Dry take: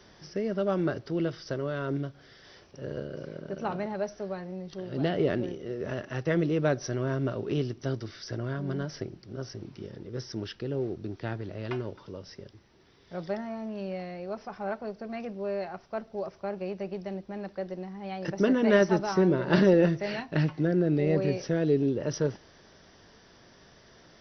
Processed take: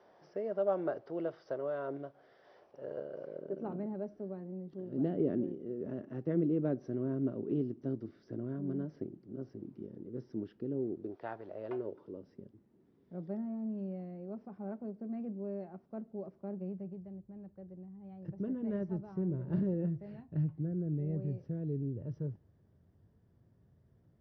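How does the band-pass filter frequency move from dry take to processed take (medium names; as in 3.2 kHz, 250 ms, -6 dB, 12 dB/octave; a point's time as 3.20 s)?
band-pass filter, Q 1.8
3.23 s 670 Hz
3.72 s 260 Hz
10.91 s 260 Hz
11.28 s 870 Hz
12.41 s 230 Hz
16.51 s 230 Hz
17.13 s 100 Hz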